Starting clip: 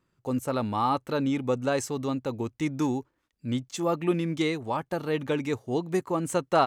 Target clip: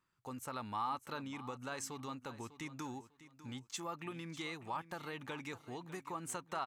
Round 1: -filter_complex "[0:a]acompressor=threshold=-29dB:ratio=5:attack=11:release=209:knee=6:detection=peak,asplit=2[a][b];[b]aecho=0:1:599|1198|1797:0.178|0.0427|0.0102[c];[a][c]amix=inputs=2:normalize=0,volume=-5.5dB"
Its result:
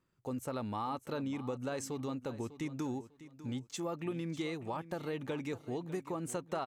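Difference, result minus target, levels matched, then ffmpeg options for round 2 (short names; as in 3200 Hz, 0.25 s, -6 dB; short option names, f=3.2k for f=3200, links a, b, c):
1000 Hz band -5.0 dB
-filter_complex "[0:a]acompressor=threshold=-29dB:ratio=5:attack=11:release=209:knee=6:detection=peak,lowshelf=f=740:t=q:w=1.5:g=-7.5,asplit=2[a][b];[b]aecho=0:1:599|1198|1797:0.178|0.0427|0.0102[c];[a][c]amix=inputs=2:normalize=0,volume=-5.5dB"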